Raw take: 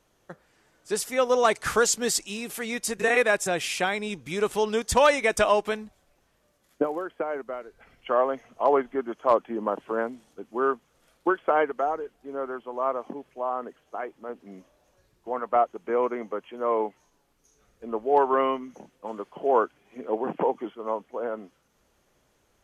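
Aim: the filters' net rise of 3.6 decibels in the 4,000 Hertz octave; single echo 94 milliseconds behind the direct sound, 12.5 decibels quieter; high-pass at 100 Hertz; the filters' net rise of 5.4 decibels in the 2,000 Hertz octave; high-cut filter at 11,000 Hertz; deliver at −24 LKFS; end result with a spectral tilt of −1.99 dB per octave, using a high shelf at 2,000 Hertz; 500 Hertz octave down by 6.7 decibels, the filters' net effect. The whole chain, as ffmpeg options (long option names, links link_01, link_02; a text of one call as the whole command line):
ffmpeg -i in.wav -af "highpass=100,lowpass=11000,equalizer=frequency=500:width_type=o:gain=-8.5,highshelf=frequency=2000:gain=-4.5,equalizer=frequency=2000:width_type=o:gain=8.5,equalizer=frequency=4000:width_type=o:gain=6.5,aecho=1:1:94:0.237,volume=3dB" out.wav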